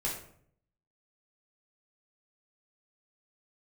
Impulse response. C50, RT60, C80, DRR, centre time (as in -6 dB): 5.0 dB, 0.60 s, 9.0 dB, -5.0 dB, 33 ms